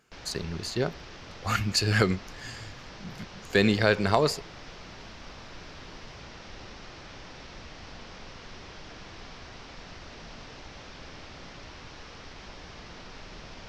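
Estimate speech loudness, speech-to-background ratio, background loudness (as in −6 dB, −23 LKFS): −26.5 LKFS, 18.5 dB, −45.0 LKFS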